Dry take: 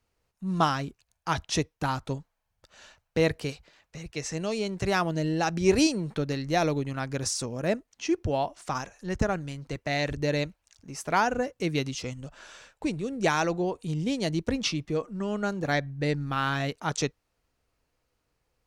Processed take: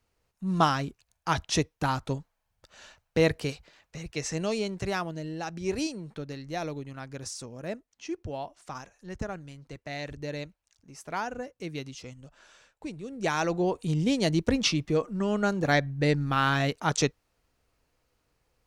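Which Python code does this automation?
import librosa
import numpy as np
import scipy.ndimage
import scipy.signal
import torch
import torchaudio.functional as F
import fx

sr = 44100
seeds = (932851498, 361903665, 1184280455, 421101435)

y = fx.gain(x, sr, db=fx.line((4.52, 1.0), (5.22, -8.5), (12.96, -8.5), (13.72, 3.0)))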